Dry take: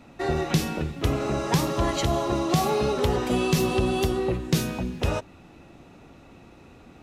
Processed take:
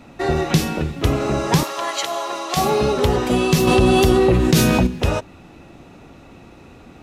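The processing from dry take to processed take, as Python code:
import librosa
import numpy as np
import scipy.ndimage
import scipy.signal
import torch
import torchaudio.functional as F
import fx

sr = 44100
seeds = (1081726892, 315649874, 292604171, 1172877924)

y = fx.highpass(x, sr, hz=760.0, slope=12, at=(1.63, 2.57))
y = fx.env_flatten(y, sr, amount_pct=70, at=(3.67, 4.87))
y = F.gain(torch.from_numpy(y), 6.0).numpy()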